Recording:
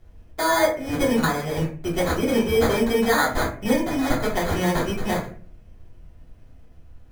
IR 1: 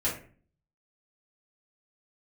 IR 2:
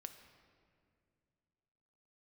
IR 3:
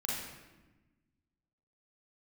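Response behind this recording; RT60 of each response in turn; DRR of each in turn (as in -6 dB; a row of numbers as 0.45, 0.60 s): 1; 0.40, 2.3, 1.1 s; -8.5, 7.0, -5.0 dB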